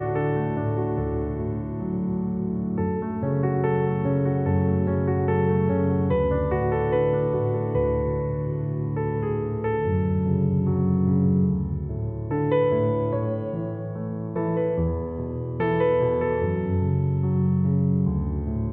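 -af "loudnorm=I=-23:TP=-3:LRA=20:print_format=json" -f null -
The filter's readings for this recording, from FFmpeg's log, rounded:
"input_i" : "-24.2",
"input_tp" : "-10.8",
"input_lra" : "3.0",
"input_thresh" : "-34.2",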